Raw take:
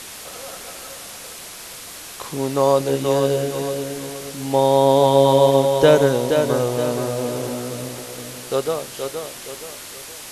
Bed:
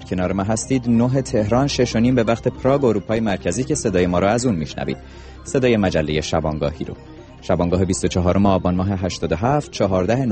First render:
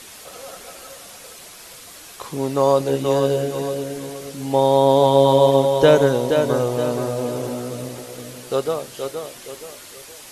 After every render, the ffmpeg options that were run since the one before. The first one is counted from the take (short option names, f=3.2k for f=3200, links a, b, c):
-af "afftdn=nr=6:nf=-37"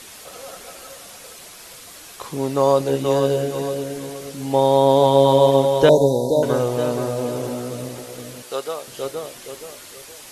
-filter_complex "[0:a]asettb=1/sr,asplit=3[a][b][c];[a]atrim=end=5.894[d];[b]atrim=start=5.89:end=6.43,asetpts=PTS-STARTPTS,afade=t=in:d=0.004:c=qsin,afade=t=out:st=0.536:d=0.004:c=qsin,asuperstop=centerf=1900:order=20:qfactor=0.69[e];[c]atrim=start=6.426[f];[d][e]acrossfade=d=0.004:c1=hsin:c2=qsin[g];[g][f]acrossfade=d=0.004:c1=qsin:c2=hsin,asettb=1/sr,asplit=3[h][i][j];[h]atrim=end=8.424[k];[i]atrim=start=8.42:end=8.87,asetpts=PTS-STARTPTS,afade=t=in:d=0.004:c=qsin,afade=t=out:st=0.446:d=0.004:c=qsin,highpass=f=800:p=1[l];[j]atrim=start=8.866[m];[k][l]acrossfade=d=0.004:c1=hsin:c2=qsin[n];[n][m]acrossfade=d=0.004:c1=qsin:c2=hsin"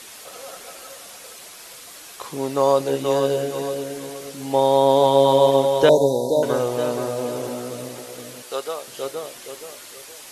-af "lowshelf=f=180:g=-10"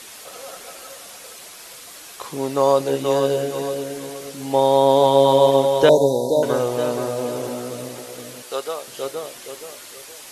-af "volume=1dB"